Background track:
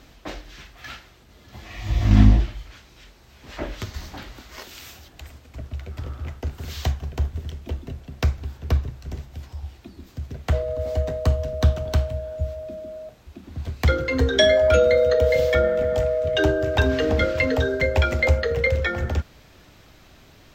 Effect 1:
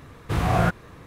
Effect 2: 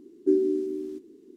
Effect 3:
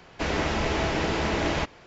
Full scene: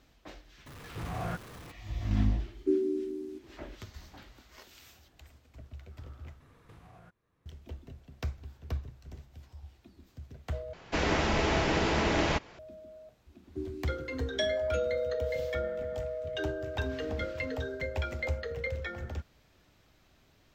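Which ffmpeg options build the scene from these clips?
ffmpeg -i bed.wav -i cue0.wav -i cue1.wav -i cue2.wav -filter_complex "[1:a]asplit=2[link_01][link_02];[2:a]asplit=2[link_03][link_04];[0:a]volume=-14dB[link_05];[link_01]aeval=exprs='val(0)+0.5*0.0398*sgn(val(0))':channel_layout=same[link_06];[link_02]acompressor=threshold=-35dB:ratio=10:attack=2.4:release=736:knee=1:detection=rms[link_07];[link_04]equalizer=frequency=470:width_type=o:width=1.3:gain=-8.5[link_08];[link_05]asplit=3[link_09][link_10][link_11];[link_09]atrim=end=6.404[link_12];[link_07]atrim=end=1.06,asetpts=PTS-STARTPTS,volume=-14dB[link_13];[link_10]atrim=start=7.456:end=10.734[link_14];[3:a]atrim=end=1.86,asetpts=PTS-STARTPTS,volume=-1.5dB[link_15];[link_11]atrim=start=12.586[link_16];[link_06]atrim=end=1.06,asetpts=PTS-STARTPTS,volume=-16dB,afade=type=in:duration=0.004:curve=hsin,afade=type=out:start_time=1.056:duration=0.004:curve=hsin,adelay=660[link_17];[link_03]atrim=end=1.36,asetpts=PTS-STARTPTS,volume=-5.5dB,afade=type=in:duration=0.004:curve=hsin,afade=type=out:start_time=1.356:duration=0.004:curve=hsin,adelay=2400[link_18];[link_08]atrim=end=1.36,asetpts=PTS-STARTPTS,volume=-11dB,afade=type=in:duration=0.004:curve=hsin,afade=type=out:start_time=1.356:duration=0.004:curve=hsin,adelay=13290[link_19];[link_12][link_13]acrossfade=duration=0.004:curve1=hsin:curve2=hsin[link_20];[link_20][link_14]acrossfade=duration=0.004:curve1=hsin:curve2=hsin[link_21];[link_21][link_15]acrossfade=duration=0.004:curve1=hsin:curve2=hsin[link_22];[link_22][link_16]acrossfade=duration=0.004:curve1=hsin:curve2=hsin[link_23];[link_23][link_17][link_18][link_19]amix=inputs=4:normalize=0" out.wav

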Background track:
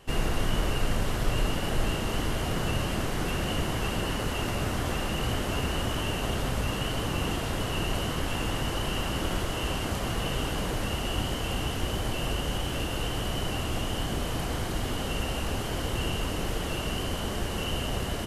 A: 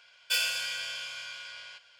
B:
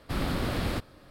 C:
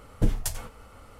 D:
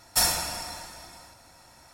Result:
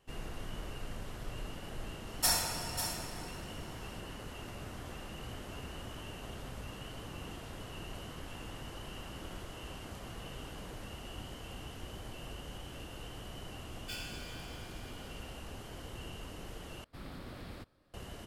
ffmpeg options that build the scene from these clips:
ffmpeg -i bed.wav -i cue0.wav -i cue1.wav -i cue2.wav -i cue3.wav -filter_complex "[0:a]volume=-15.5dB[link_01];[4:a]aecho=1:1:544:0.376[link_02];[1:a]acrusher=bits=4:mode=log:mix=0:aa=0.000001[link_03];[link_01]asplit=2[link_04][link_05];[link_04]atrim=end=16.844[link_06];[2:a]atrim=end=1.1,asetpts=PTS-STARTPTS,volume=-17dB[link_07];[link_05]atrim=start=17.936[link_08];[link_02]atrim=end=1.93,asetpts=PTS-STARTPTS,volume=-6.5dB,afade=type=in:duration=0.004:curve=hsin,afade=type=out:start_time=1.926:duration=0.004:curve=hsin,adelay=2070[link_09];[link_03]atrim=end=1.99,asetpts=PTS-STARTPTS,volume=-16dB,afade=type=in:duration=0.004:curve=hsin,afade=type=out:start_time=1.986:duration=0.004:curve=hsin,adelay=13580[link_10];[link_06][link_07]acrossfade=duration=0.004:curve1=hsin:curve2=hsin[link_11];[link_11][link_08]acrossfade=duration=0.004:curve1=hsin:curve2=hsin[link_12];[link_12][link_09][link_10]amix=inputs=3:normalize=0" out.wav

